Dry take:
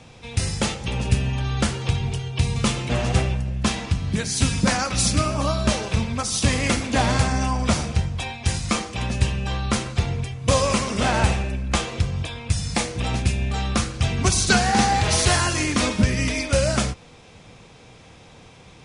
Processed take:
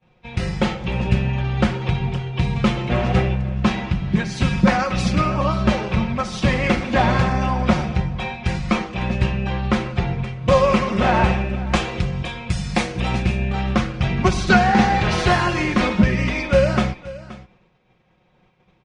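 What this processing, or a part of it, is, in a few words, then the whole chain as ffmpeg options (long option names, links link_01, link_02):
hearing-loss simulation: -filter_complex "[0:a]aecho=1:1:5.5:0.57,asettb=1/sr,asplit=3[link_01][link_02][link_03];[link_01]atrim=end=11.674[link_04];[link_02]atrim=start=11.67:end=13.26,asetpts=PTS-STARTPTS,afade=type=in:duration=0.004:curve=qsin,afade=type=out:start_time=1.586:duration=0.004:curve=qsin,aemphasis=mode=production:type=50fm[link_05];[link_03]atrim=start=13.256[link_06];[link_04][link_05]acrossfade=duration=0.004:curve1=hsin:curve2=qsin[link_07];[link_07][link_06]acrossfade=duration=0.004:curve1=qsin:curve2=hsin,lowpass=2600,agate=range=-33dB:threshold=-35dB:ratio=3:detection=peak,aecho=1:1:525:0.126,volume=3dB"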